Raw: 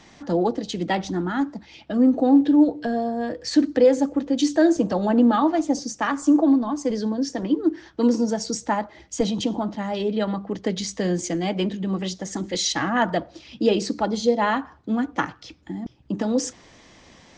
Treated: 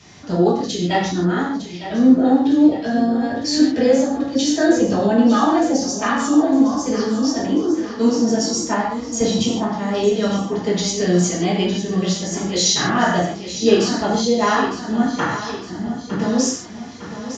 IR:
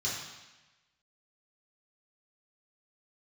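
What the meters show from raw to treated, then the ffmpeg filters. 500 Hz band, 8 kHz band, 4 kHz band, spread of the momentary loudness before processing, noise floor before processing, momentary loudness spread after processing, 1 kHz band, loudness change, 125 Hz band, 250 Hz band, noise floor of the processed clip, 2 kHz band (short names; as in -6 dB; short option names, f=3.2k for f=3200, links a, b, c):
+4.0 dB, +9.0 dB, +7.5 dB, 10 LU, -52 dBFS, 9 LU, +4.5 dB, +4.5 dB, +7.0 dB, +4.0 dB, -33 dBFS, +5.5 dB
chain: -filter_complex "[0:a]aecho=1:1:907|1814|2721|3628|4535|5442:0.251|0.133|0.0706|0.0374|0.0198|0.0105[a];[1:a]atrim=start_sample=2205,afade=t=out:st=0.22:d=0.01,atrim=end_sample=10143[b];[a][b]afir=irnorm=-1:irlink=0"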